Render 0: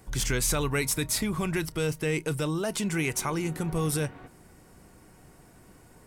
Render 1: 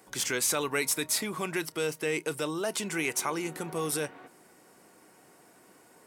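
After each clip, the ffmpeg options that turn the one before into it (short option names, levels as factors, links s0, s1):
-af "highpass=310"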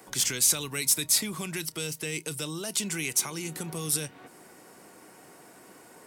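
-filter_complex "[0:a]acrossover=split=200|3000[s0][s1][s2];[s1]acompressor=threshold=0.00447:ratio=4[s3];[s0][s3][s2]amix=inputs=3:normalize=0,volume=2"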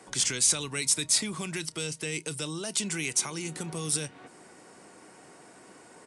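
-af "aresample=22050,aresample=44100"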